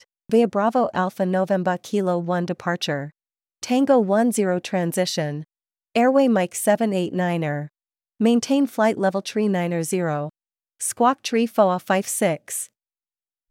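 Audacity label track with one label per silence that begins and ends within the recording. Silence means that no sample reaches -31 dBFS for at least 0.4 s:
3.070000	3.630000	silence
5.420000	5.960000	silence
7.660000	8.200000	silence
10.290000	10.810000	silence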